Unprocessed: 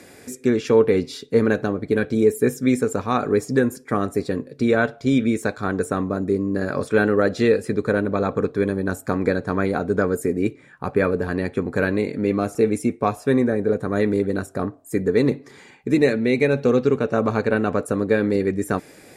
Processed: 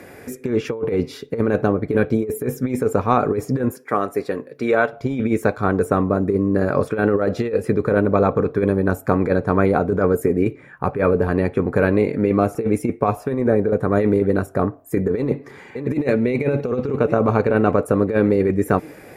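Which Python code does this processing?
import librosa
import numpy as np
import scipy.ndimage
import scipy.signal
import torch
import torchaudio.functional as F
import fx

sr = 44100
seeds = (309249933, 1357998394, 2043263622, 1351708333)

y = fx.highpass(x, sr, hz=570.0, slope=6, at=(3.71, 4.93))
y = fx.echo_throw(y, sr, start_s=15.17, length_s=0.85, ms=580, feedback_pct=70, wet_db=-15.5)
y = fx.dynamic_eq(y, sr, hz=1700.0, q=3.0, threshold_db=-41.0, ratio=4.0, max_db=-6)
y = fx.over_compress(y, sr, threshold_db=-20.0, ratio=-0.5)
y = fx.graphic_eq_10(y, sr, hz=(250, 4000, 8000), db=(-4, -9, -12))
y = y * librosa.db_to_amplitude(5.5)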